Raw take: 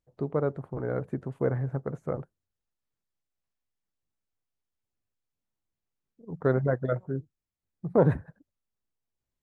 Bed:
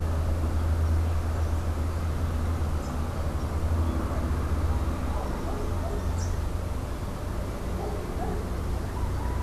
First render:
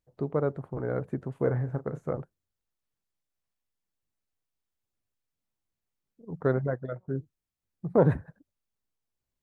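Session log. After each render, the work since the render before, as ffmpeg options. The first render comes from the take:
-filter_complex "[0:a]asettb=1/sr,asplit=3[s0][s1][s2];[s0]atrim=end=1.364[s3];[s1]atrim=start=1.36:end=2.13,asetpts=PTS-STARTPTS,afade=t=in:d=0.004:c=qsin,afade=t=out:st=0.766:d=0.004:c=qsin,asplit=2[s4][s5];[s5]adelay=33,volume=0.282[s6];[s4][s6]amix=inputs=2:normalize=0,atrim=end_sample=33957[s7];[s2]atrim=start=2.126[s8];[s3][s7]acrossfade=d=0.004:c1=hsin:c2=qsin[s9];[s9][s8]acrossfade=d=0.004:c1=qsin:c2=hsin,asplit=2[s10][s11];[s10]atrim=end=7.08,asetpts=PTS-STARTPTS,afade=t=out:st=6.39:d=0.69:silence=0.211349[s12];[s11]atrim=start=7.08,asetpts=PTS-STARTPTS,afade=t=in:d=0.004:c=hsin:silence=0.211349[s13];[s12][s13]concat=n=2:v=0:a=1"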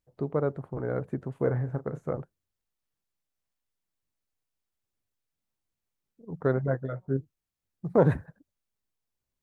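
-filter_complex "[0:a]asettb=1/sr,asplit=3[s0][s1][s2];[s0]atrim=end=6.664[s3];[s1]atrim=start=6.66:end=7.17,asetpts=PTS-STARTPTS,afade=t=in:d=0.004:c=qsin,afade=t=out:st=0.506:d=0.004:c=qsin,asplit=2[s4][s5];[s5]adelay=15,volume=0.668[s6];[s4][s6]amix=inputs=2:normalize=0,atrim=end_sample=22491[s7];[s2]atrim=start=7.166[s8];[s3][s7]acrossfade=d=0.004:c1=hsin:c2=qsin[s9];[s9][s8]acrossfade=d=0.004:c1=qsin:c2=hsin,asettb=1/sr,asplit=3[s10][s11][s12];[s10]atrim=end=7.854[s13];[s11]atrim=start=7.85:end=8.26,asetpts=PTS-STARTPTS,afade=t=in:d=0.004:c=qsin,afade=t=out:st=0.406:d=0.004:c=qsin,highshelf=f=2200:g=6.5[s14];[s12]atrim=start=8.256[s15];[s13][s14]acrossfade=d=0.004:c1=hsin:c2=qsin[s16];[s16][s15]acrossfade=d=0.004:c1=qsin:c2=hsin"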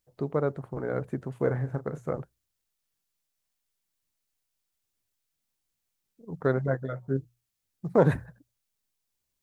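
-af "highshelf=f=2300:g=8.5,bandreject=f=60:t=h:w=6,bandreject=f=120:t=h:w=6"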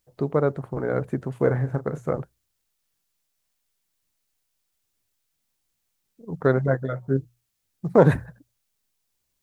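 -af "volume=1.88"

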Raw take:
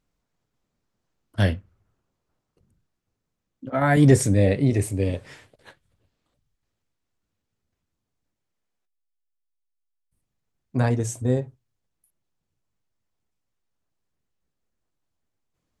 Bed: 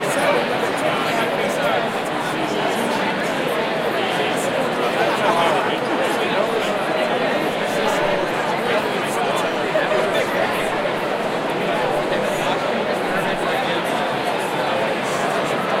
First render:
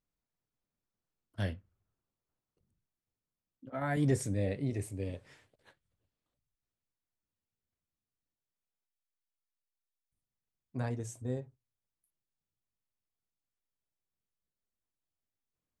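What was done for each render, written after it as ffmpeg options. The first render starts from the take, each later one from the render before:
-af "volume=0.2"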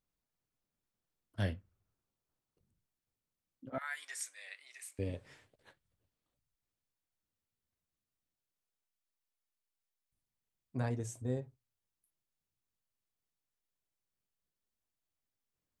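-filter_complex "[0:a]asettb=1/sr,asplit=3[s0][s1][s2];[s0]atrim=end=3.784[s3];[s1]atrim=start=3.78:end=4.99,asetpts=PTS-STARTPTS,afade=t=in:d=0.004:c=qsin,afade=t=out:st=1.206:d=0.004:c=qsin,highpass=f=1300:w=0.5412,highpass=f=1300:w=1.3066[s4];[s2]atrim=start=4.986[s5];[s3][s4]acrossfade=d=0.004:c1=hsin:c2=qsin[s6];[s6][s5]acrossfade=d=0.004:c1=qsin:c2=hsin"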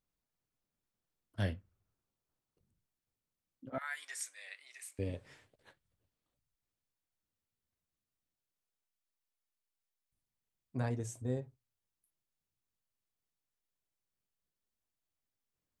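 -af anull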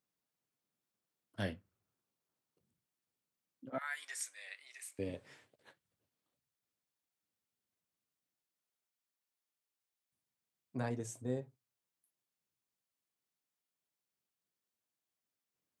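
-af "highpass=150"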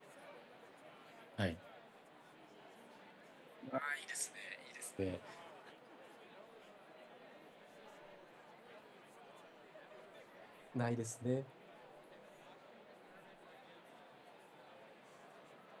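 -filter_complex "[1:a]volume=0.0106[s0];[0:a][s0]amix=inputs=2:normalize=0"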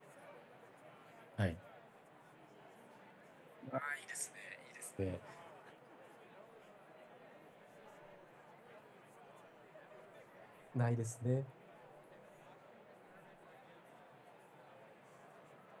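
-af "equalizer=f=125:t=o:w=1:g=7,equalizer=f=250:t=o:w=1:g=-3,equalizer=f=4000:t=o:w=1:g=-8"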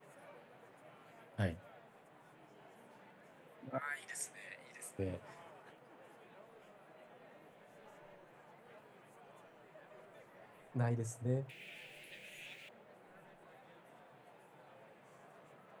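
-filter_complex "[0:a]asettb=1/sr,asplit=3[s0][s1][s2];[s0]atrim=end=11.494[s3];[s1]atrim=start=11.49:end=12.69,asetpts=PTS-STARTPTS,afade=t=in:d=0.004:c=qsin,afade=t=out:st=1.196:d=0.004:c=qsin,highshelf=f=1700:t=q:w=3:g=14[s4];[s2]atrim=start=12.686[s5];[s3][s4]acrossfade=d=0.004:c1=hsin:c2=qsin[s6];[s6][s5]acrossfade=d=0.004:c1=qsin:c2=hsin"

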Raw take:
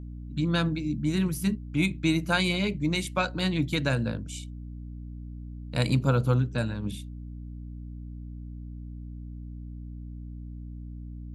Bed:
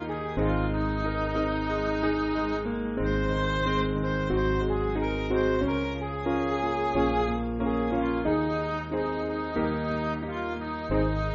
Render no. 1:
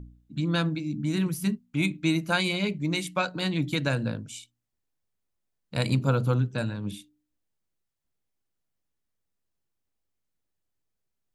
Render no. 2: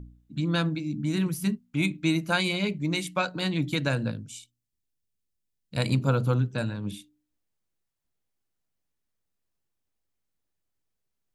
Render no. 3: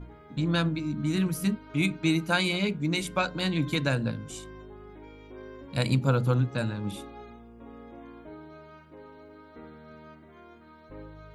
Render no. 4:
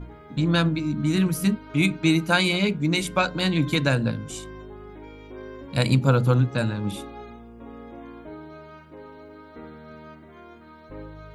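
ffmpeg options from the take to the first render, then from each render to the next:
-af "bandreject=f=60:t=h:w=4,bandreject=f=120:t=h:w=4,bandreject=f=180:t=h:w=4,bandreject=f=240:t=h:w=4,bandreject=f=300:t=h:w=4"
-filter_complex "[0:a]asettb=1/sr,asplit=3[s0][s1][s2];[s0]atrim=end=4.114[s3];[s1]atrim=start=4.11:end=5.77,asetpts=PTS-STARTPTS,afade=t=in:d=0.004:c=qsin,afade=t=out:st=1.656:d=0.004:c=qsin,equalizer=f=950:t=o:w=2.2:g=-12[s4];[s2]atrim=start=5.766[s5];[s3][s4]acrossfade=d=0.004:c1=hsin:c2=qsin[s6];[s6][s5]acrossfade=d=0.004:c1=qsin:c2=hsin"
-filter_complex "[1:a]volume=0.106[s0];[0:a][s0]amix=inputs=2:normalize=0"
-af "volume=1.78"

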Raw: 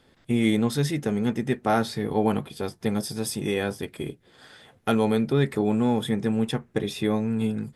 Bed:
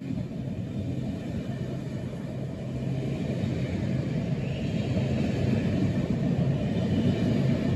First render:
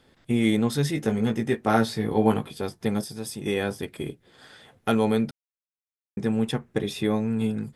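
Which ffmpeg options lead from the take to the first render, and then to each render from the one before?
-filter_complex "[0:a]asettb=1/sr,asplit=3[s0][s1][s2];[s0]atrim=end=0.934[s3];[s1]atrim=start=0.93:end=2.53,asetpts=PTS-STARTPTS,afade=t=in:d=0.004:c=qsin,afade=t=out:st=1.596:d=0.004:c=qsin,asplit=2[s4][s5];[s5]adelay=18,volume=0.562[s6];[s4][s6]amix=inputs=2:normalize=0,atrim=end_sample=70560[s7];[s2]atrim=start=2.526[s8];[s3][s7]acrossfade=d=0.004:c1=hsin:c2=qsin[s9];[s9][s8]acrossfade=d=0.004:c1=qsin:c2=hsin,asplit=5[s10][s11][s12][s13][s14];[s10]atrim=end=3.042[s15];[s11]atrim=start=3.038:end=3.462,asetpts=PTS-STARTPTS,volume=0.562[s16];[s12]atrim=start=3.458:end=5.31,asetpts=PTS-STARTPTS,afade=t=out:st=1.848:d=0.004:c=hsin[s17];[s13]atrim=start=5.31:end=6.17,asetpts=PTS-STARTPTS,volume=0[s18];[s14]atrim=start=6.17,asetpts=PTS-STARTPTS,afade=t=in:d=0.004:c=hsin[s19];[s15][s16]acrossfade=d=0.004:c1=hsin:c2=hsin[s20];[s17][s18][s19]concat=n=3:v=0:a=1[s21];[s20][s21]acrossfade=d=0.004:c1=hsin:c2=hsin"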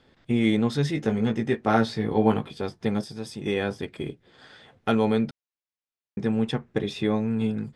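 -af "lowpass=5500"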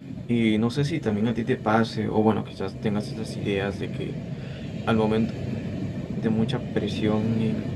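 -filter_complex "[1:a]volume=0.596[s0];[0:a][s0]amix=inputs=2:normalize=0"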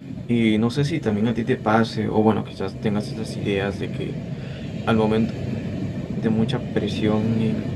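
-af "volume=1.41"

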